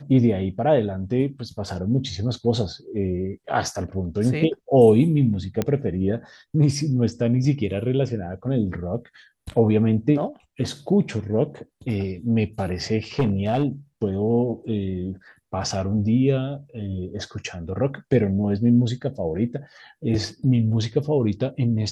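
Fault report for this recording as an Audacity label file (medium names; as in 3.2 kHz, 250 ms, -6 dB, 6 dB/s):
5.620000	5.620000	pop -10 dBFS
13.190000	13.650000	clipped -15 dBFS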